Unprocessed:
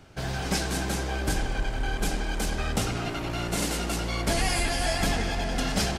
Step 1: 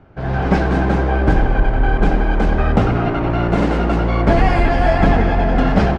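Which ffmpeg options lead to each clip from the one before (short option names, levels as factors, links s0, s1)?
-af "lowpass=1400,dynaudnorm=f=180:g=3:m=2.82,volume=1.78"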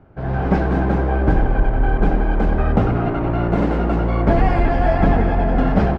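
-af "highshelf=f=2300:g=-10.5,volume=0.841"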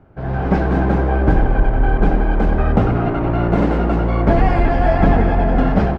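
-af "dynaudnorm=f=400:g=3:m=1.78"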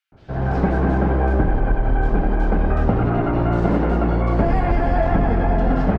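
-filter_complex "[0:a]acompressor=threshold=0.224:ratio=6,acrossover=split=3000[s0][s1];[s0]adelay=120[s2];[s2][s1]amix=inputs=2:normalize=0"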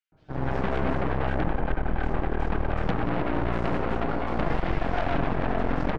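-af "flanger=delay=6.2:depth=1.4:regen=44:speed=0.65:shape=sinusoidal,aeval=exprs='0.355*(cos(1*acos(clip(val(0)/0.355,-1,1)))-cos(1*PI/2))+0.1*(cos(8*acos(clip(val(0)/0.355,-1,1)))-cos(8*PI/2))':c=same,volume=0.447"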